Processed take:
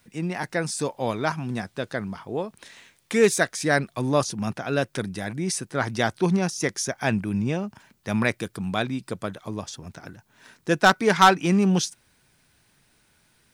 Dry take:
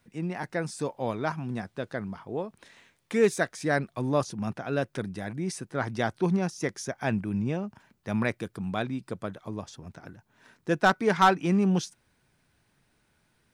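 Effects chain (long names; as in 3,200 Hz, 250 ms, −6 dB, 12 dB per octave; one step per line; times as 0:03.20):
high-shelf EQ 2,500 Hz +8 dB
level +3.5 dB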